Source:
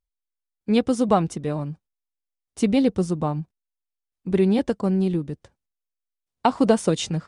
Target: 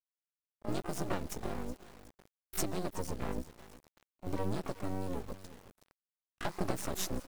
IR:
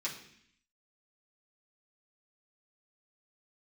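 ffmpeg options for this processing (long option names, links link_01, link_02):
-filter_complex "[0:a]aeval=exprs='val(0)*sin(2*PI*95*n/s)':channel_layout=same,acompressor=threshold=-34dB:ratio=3,highshelf=frequency=3900:width_type=q:width=1.5:gain=7.5,asplit=2[link_01][link_02];[link_02]aecho=0:1:370|740|1110:0.133|0.0387|0.0112[link_03];[link_01][link_03]amix=inputs=2:normalize=0,aphaser=in_gain=1:out_gain=1:delay=4.1:decay=0.26:speed=0.9:type=triangular,aeval=exprs='max(val(0),0)':channel_layout=same,acrusher=bits=8:mix=0:aa=0.000001,asplit=2[link_04][link_05];[link_05]asetrate=88200,aresample=44100,atempo=0.5,volume=-6dB[link_06];[link_04][link_06]amix=inputs=2:normalize=0"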